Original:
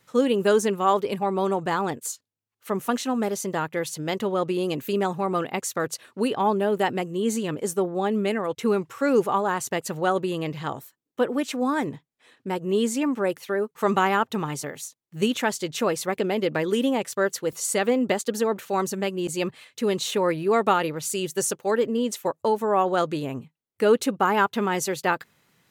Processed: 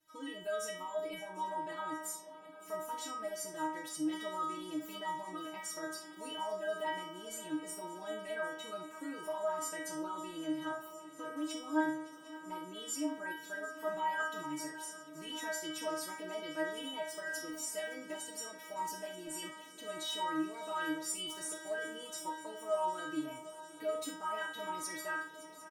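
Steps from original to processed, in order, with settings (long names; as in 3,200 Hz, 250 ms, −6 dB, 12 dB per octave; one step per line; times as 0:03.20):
comb filter 6.3 ms, depth 86%
brickwall limiter −17.5 dBFS, peak gain reduction 12 dB
stiff-string resonator 310 Hz, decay 0.57 s, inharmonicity 0.002
feedback echo with a long and a short gap by turns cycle 753 ms, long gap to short 3 to 1, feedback 77%, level −18 dB
reverb whose tail is shaped and stops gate 80 ms rising, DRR 6.5 dB
level +4.5 dB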